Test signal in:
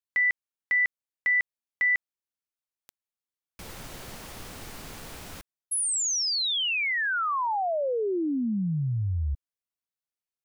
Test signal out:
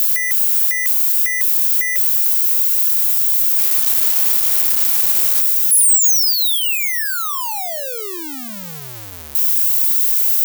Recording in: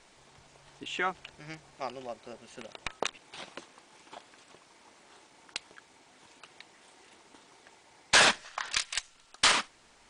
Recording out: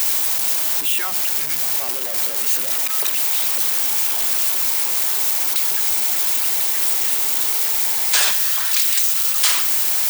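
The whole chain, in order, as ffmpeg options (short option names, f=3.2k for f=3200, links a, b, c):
-af "aeval=exprs='val(0)+0.5*0.0841*sgn(val(0))':c=same,aemphasis=mode=production:type=riaa,volume=-5.5dB"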